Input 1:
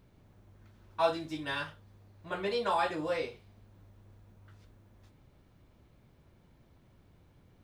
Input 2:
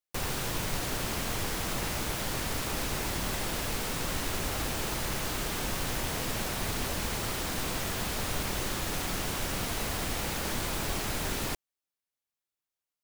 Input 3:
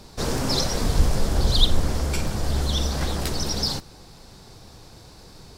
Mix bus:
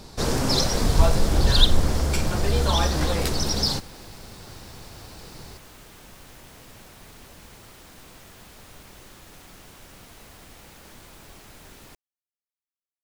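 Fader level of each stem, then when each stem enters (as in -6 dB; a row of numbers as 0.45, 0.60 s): +2.0, -14.5, +1.5 dB; 0.00, 0.40, 0.00 s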